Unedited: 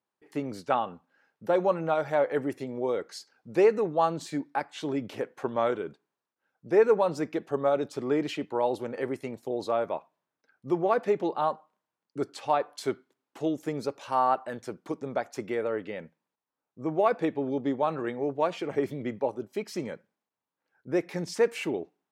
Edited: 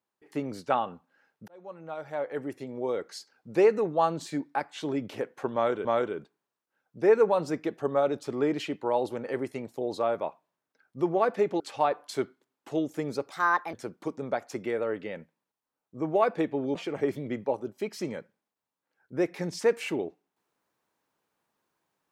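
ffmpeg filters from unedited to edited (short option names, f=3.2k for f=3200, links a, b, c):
-filter_complex "[0:a]asplit=7[a][b][c][d][e][f][g];[a]atrim=end=1.48,asetpts=PTS-STARTPTS,afade=t=out:st=1.476:d=0.004:c=hsin[h];[b]atrim=start=1.48:end=5.852,asetpts=PTS-STARTPTS,afade=t=in:d=1.68[i];[c]atrim=start=5.538:end=11.292[j];[d]atrim=start=12.288:end=14.004[k];[e]atrim=start=14:end=14.57,asetpts=PTS-STARTPTS,asetrate=59535,aresample=44100[l];[f]atrim=start=14.566:end=17.592[m];[g]atrim=start=18.498[n];[h][i]concat=n=2:v=0:a=1[o];[o][j]acrossfade=d=0.004:c1=hsin:c2=hsin[p];[p][k]acrossfade=d=0.004:c1=hsin:c2=hsin[q];[q][l]acrossfade=d=0.004:c1=hsin:c2=hsin[r];[r][m]acrossfade=d=0.004:c1=hsin:c2=hsin[s];[s][n]acrossfade=d=0.004:c1=hsin:c2=hsin"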